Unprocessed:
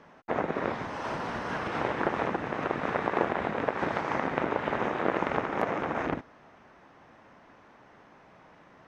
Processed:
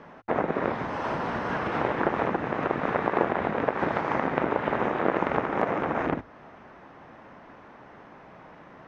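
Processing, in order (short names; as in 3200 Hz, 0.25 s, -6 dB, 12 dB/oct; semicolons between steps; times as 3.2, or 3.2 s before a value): LPF 2400 Hz 6 dB/oct; notches 50/100 Hz; in parallel at -1 dB: compressor, threshold -39 dBFS, peak gain reduction 18 dB; on the sum: gain +2 dB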